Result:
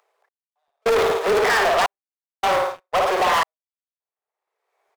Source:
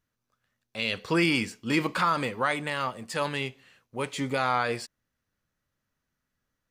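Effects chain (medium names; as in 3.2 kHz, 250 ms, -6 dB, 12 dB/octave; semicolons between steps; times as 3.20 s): median filter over 41 samples; feedback delay 74 ms, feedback 55%, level -5.5 dB; speed mistake 33 rpm record played at 45 rpm; peaking EQ 1.1 kHz +11.5 dB 1.4 oct; in parallel at -1.5 dB: compression 5:1, threshold -38 dBFS, peak gain reduction 18 dB; on the sum: hard clipper -25.5 dBFS, distortion -7 dB; steep high-pass 400 Hz 96 dB/octave; trance gate "xx....xxxxx" 105 bpm -60 dB; expander -35 dBFS; waveshaping leveller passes 3; upward compressor, threshold -41 dBFS; crackling interface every 0.42 s, samples 512, repeat, from 0.67 s; trim +5.5 dB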